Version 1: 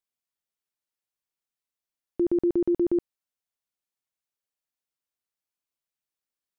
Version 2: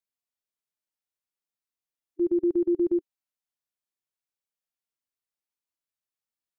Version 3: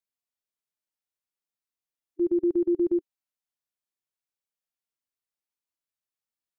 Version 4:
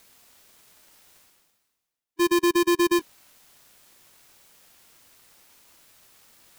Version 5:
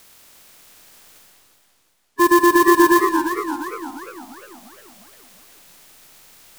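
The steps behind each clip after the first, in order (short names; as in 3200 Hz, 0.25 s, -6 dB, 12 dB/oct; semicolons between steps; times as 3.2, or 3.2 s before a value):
harmonic-percussive split percussive -13 dB
nothing audible
half-waves squared off; reverse; upward compressor, threshold -28 dBFS; reverse
bin magnitudes rounded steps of 30 dB; digital reverb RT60 2.1 s, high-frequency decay 0.6×, pre-delay 40 ms, DRR 7 dB; warbling echo 0.347 s, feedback 50%, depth 165 cents, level -9.5 dB; gain +7.5 dB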